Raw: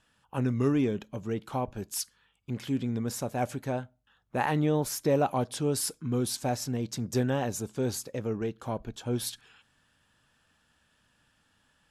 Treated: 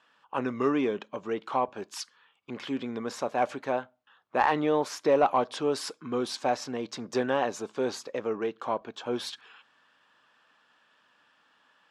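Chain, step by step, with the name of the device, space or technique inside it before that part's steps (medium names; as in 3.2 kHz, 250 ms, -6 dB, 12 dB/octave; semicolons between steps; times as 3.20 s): intercom (band-pass 380–4000 Hz; peaking EQ 1.1 kHz +6 dB 0.39 oct; saturation -15.5 dBFS, distortion -25 dB); trim +5 dB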